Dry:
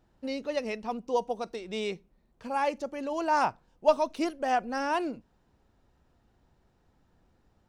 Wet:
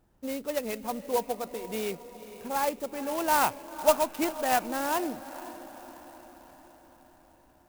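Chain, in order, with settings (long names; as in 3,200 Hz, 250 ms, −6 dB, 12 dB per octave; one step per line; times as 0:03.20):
feedback delay with all-pass diffusion 485 ms, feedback 57%, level −14 dB
0:02.84–0:04.66: dynamic equaliser 2,600 Hz, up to +7 dB, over −45 dBFS, Q 0.95
converter with an unsteady clock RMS 0.058 ms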